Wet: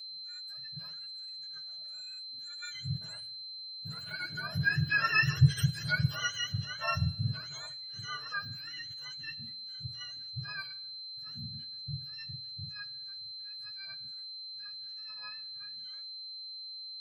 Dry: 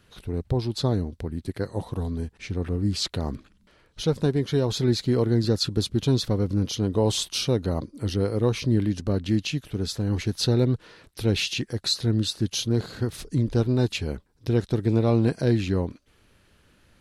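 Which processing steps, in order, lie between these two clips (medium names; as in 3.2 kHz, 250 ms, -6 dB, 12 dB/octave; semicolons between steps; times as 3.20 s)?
spectrum inverted on a logarithmic axis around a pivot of 780 Hz; Doppler pass-by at 5.47 s, 12 m/s, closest 6.4 m; gate -47 dBFS, range -10 dB; graphic EQ with 31 bands 630 Hz +8 dB, 1.6 kHz +11 dB, 3.15 kHz +9 dB; whistle 4.1 kHz -39 dBFS; harmonic-percussive split percussive -18 dB; resonant high shelf 6.8 kHz +9 dB, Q 1.5; comb of notches 190 Hz; on a send: reverberation RT60 0.70 s, pre-delay 4 ms, DRR 17.5 dB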